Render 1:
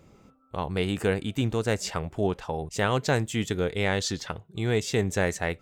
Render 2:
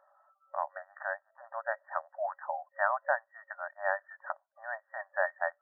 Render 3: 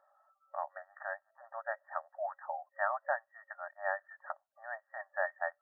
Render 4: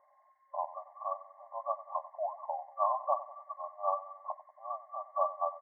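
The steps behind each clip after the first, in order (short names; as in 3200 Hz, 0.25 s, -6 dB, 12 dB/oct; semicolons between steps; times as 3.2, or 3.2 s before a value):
reverb removal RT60 0.56 s; FFT band-pass 550–1900 Hz
notch comb 500 Hz; gain -3 dB
nonlinear frequency compression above 1000 Hz 4:1; feedback echo 94 ms, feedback 54%, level -15.5 dB; gain +2 dB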